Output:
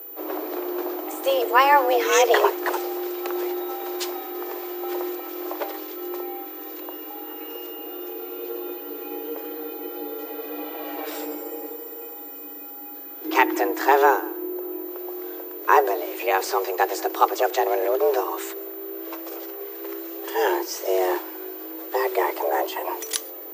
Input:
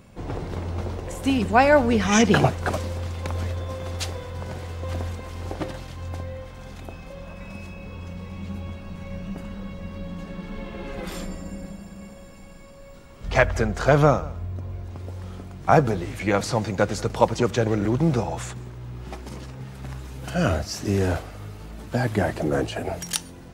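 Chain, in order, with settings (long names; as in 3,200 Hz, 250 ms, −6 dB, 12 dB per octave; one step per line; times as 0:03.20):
steady tone 14,000 Hz −36 dBFS
frequency shifter +270 Hz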